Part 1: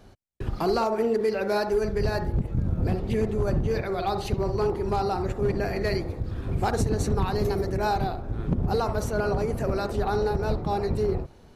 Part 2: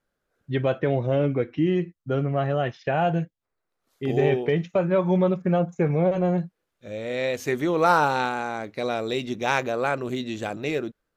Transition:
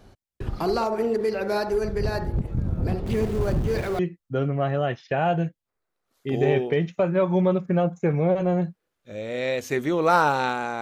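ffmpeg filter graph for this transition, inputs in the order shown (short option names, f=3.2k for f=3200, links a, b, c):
-filter_complex "[0:a]asettb=1/sr,asplit=3[a][b][c];[a]atrim=end=3.064[d];[b]atrim=start=3.06:end=3.99,asetpts=PTS-STARTPTS,afade=t=in:d=0.004:c=qsin,afade=t=out:st=0.926:d=0.004:c=qsin,aeval=exprs='val(0)+0.5*0.0211*sgn(val(0))':c=same[e];[c]atrim=start=3.986[f];[d][e]acrossfade=d=0.004:c1=hsin:c2=qsin[g];[g][f]acrossfade=d=0.004:c1=qsin:c2=hsin,apad=whole_dur=10.81,atrim=end=10.81,atrim=end=3.992[h];[1:a]atrim=start=1.748:end=8.57[i];[h][i]acrossfade=d=0.004:c1=hsin:c2=hsin"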